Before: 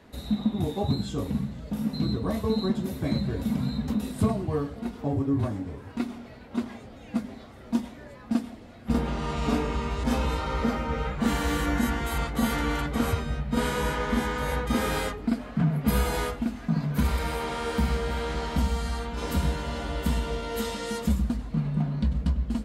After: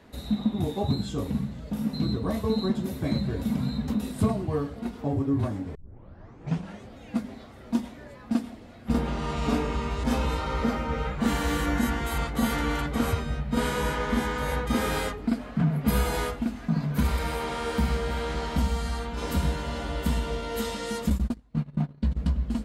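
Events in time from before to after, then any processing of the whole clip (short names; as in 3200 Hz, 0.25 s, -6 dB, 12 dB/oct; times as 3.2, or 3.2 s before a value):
5.75 tape start 1.14 s
21.1–22.18 gate -27 dBFS, range -24 dB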